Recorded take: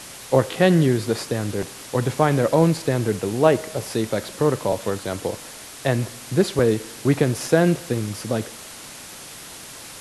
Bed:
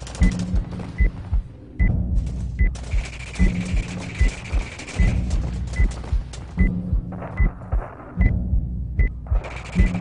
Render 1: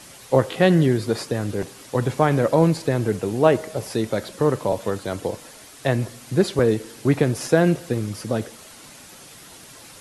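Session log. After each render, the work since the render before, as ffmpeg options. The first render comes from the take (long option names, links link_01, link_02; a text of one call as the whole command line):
ffmpeg -i in.wav -af "afftdn=noise_reduction=7:noise_floor=-39" out.wav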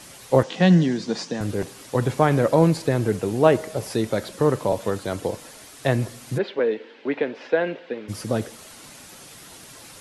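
ffmpeg -i in.wav -filter_complex "[0:a]asettb=1/sr,asplit=3[link_01][link_02][link_03];[link_01]atrim=end=0.434[link_04];[link_02]atrim=start=0.43:end=1.41,asetpts=PTS-STARTPTS,afade=type=in:duration=0.004:curve=qsin,afade=type=out:start_time=0.976:duration=0.004:curve=qsin,highpass=frequency=180:width=0.5412,highpass=frequency=180:width=1.3066,equalizer=frequency=180:width_type=q:width=4:gain=8,equalizer=frequency=390:width_type=q:width=4:gain=-9,equalizer=frequency=590:width_type=q:width=4:gain=-5,equalizer=frequency=1300:width_type=q:width=4:gain=-7,equalizer=frequency=2200:width_type=q:width=4:gain=-3,equalizer=frequency=5900:width_type=q:width=4:gain=5,lowpass=frequency=7100:width=0.5412,lowpass=frequency=7100:width=1.3066[link_05];[link_03]atrim=start=1.406[link_06];[link_04][link_05]acrossfade=duration=0.004:curve1=hsin:curve2=qsin[link_07];[link_07][link_06]acrossfade=duration=0.004:curve1=qsin:curve2=hsin,asplit=3[link_08][link_09][link_10];[link_08]afade=type=out:start_time=6.37:duration=0.02[link_11];[link_09]highpass=frequency=290:width=0.5412,highpass=frequency=290:width=1.3066,equalizer=frequency=340:width_type=q:width=4:gain=-9,equalizer=frequency=710:width_type=q:width=4:gain=-5,equalizer=frequency=1200:width_type=q:width=4:gain=-8,lowpass=frequency=3200:width=0.5412,lowpass=frequency=3200:width=1.3066,afade=type=in:start_time=6.37:duration=0.02,afade=type=out:start_time=8.08:duration=0.02[link_12];[link_10]afade=type=in:start_time=8.08:duration=0.02[link_13];[link_11][link_12][link_13]amix=inputs=3:normalize=0" out.wav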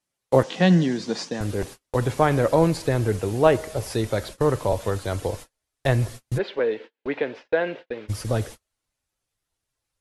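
ffmpeg -i in.wav -af "agate=range=-39dB:threshold=-36dB:ratio=16:detection=peak,asubboost=boost=10:cutoff=62" out.wav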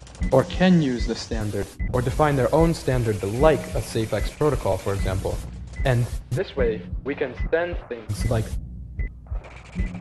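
ffmpeg -i in.wav -i bed.wav -filter_complex "[1:a]volume=-9dB[link_01];[0:a][link_01]amix=inputs=2:normalize=0" out.wav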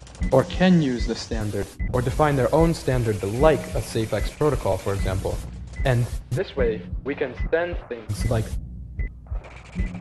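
ffmpeg -i in.wav -af anull out.wav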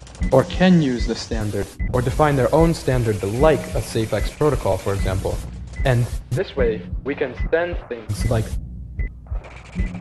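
ffmpeg -i in.wav -af "volume=3dB,alimiter=limit=-1dB:level=0:latency=1" out.wav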